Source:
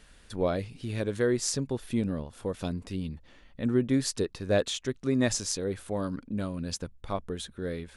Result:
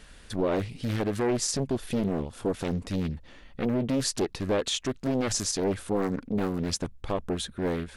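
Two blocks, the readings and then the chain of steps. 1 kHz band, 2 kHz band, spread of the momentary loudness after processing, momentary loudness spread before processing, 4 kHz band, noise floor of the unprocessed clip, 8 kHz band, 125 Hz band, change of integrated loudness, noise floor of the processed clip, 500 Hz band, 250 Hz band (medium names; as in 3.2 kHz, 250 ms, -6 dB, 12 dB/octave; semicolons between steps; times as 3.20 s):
+4.5 dB, 0.0 dB, 6 LU, 10 LU, +3.0 dB, -57 dBFS, +2.0 dB, +1.0 dB, +1.5 dB, -52 dBFS, +1.0 dB, +1.5 dB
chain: peak limiter -23 dBFS, peak gain reduction 10 dB; loudspeaker Doppler distortion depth 0.88 ms; trim +5.5 dB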